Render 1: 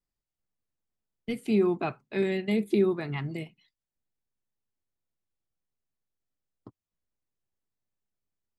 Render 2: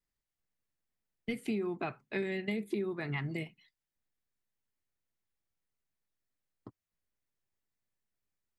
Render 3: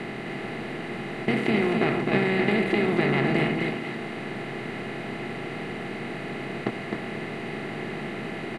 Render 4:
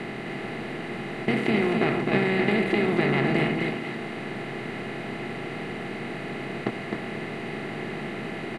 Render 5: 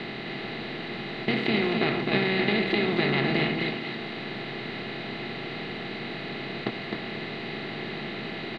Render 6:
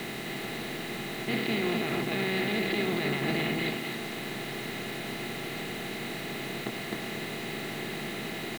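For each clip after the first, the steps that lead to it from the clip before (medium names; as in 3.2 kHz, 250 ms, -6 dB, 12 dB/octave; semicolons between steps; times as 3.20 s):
peaking EQ 1.9 kHz +5.5 dB 0.71 oct; compression 12:1, threshold -29 dBFS, peak gain reduction 11.5 dB; trim -1.5 dB
spectral levelling over time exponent 0.2; distance through air 59 m; delay 260 ms -4.5 dB; trim +5 dB
no audible change
resonant low-pass 4 kHz, resonance Q 4.4; trim -2.5 dB
peak limiter -18 dBFS, peak gain reduction 8.5 dB; bit crusher 7-bit; trim -1.5 dB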